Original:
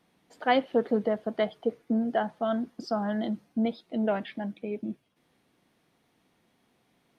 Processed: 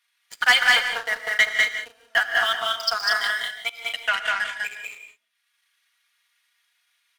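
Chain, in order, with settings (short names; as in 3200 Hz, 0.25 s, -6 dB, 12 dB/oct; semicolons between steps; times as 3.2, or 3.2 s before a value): transient shaper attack +4 dB, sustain -9 dB; HPF 1500 Hz 24 dB/oct; comb 4.2 ms, depth 65%; sample leveller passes 3; in parallel at -1 dB: compressor, threshold -24 dBFS, peak gain reduction 6 dB; 3.83–4.51 on the sum: treble ducked by the level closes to 2300 Hz, closed at -14.5 dBFS; on a send: loudspeakers at several distances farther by 68 m -2 dB, 80 m -8 dB; on the sum: non-linear reverb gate 0.2 s rising, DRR 8.5 dB; gain +2.5 dB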